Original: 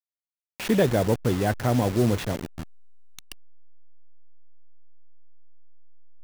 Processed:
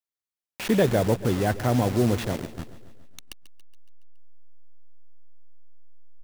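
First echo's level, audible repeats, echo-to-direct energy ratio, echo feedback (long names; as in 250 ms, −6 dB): −16.0 dB, 5, −14.0 dB, 58%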